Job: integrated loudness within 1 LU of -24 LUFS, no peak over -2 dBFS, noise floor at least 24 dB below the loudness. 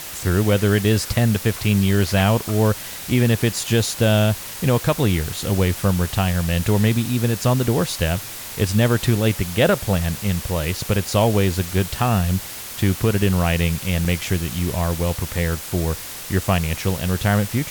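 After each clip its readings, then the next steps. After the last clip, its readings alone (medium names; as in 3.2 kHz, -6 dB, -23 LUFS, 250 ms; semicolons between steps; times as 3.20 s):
dropouts 1; longest dropout 3.0 ms; noise floor -33 dBFS; noise floor target -45 dBFS; loudness -20.5 LUFS; peak level -5.0 dBFS; loudness target -24.0 LUFS
-> interpolate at 14.05 s, 3 ms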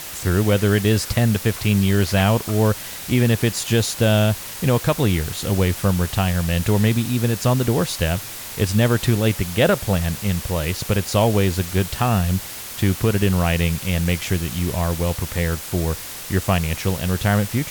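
dropouts 0; noise floor -33 dBFS; noise floor target -45 dBFS
-> noise print and reduce 12 dB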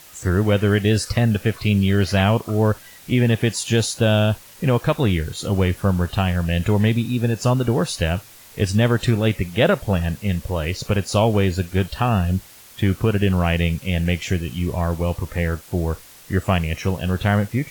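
noise floor -45 dBFS; loudness -20.5 LUFS; peak level -5.5 dBFS; loudness target -24.0 LUFS
-> trim -3.5 dB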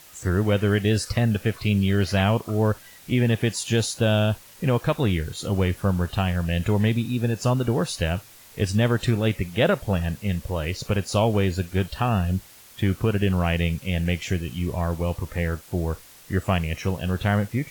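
loudness -24.0 LUFS; peak level -9.0 dBFS; noise floor -49 dBFS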